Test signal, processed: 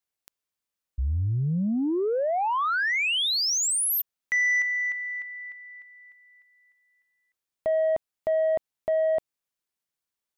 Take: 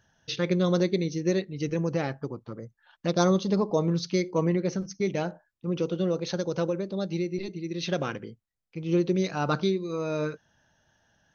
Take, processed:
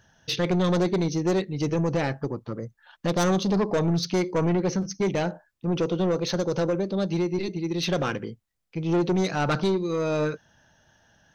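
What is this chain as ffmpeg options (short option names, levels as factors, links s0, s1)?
-af "asoftclip=type=tanh:threshold=0.0562,volume=2.11"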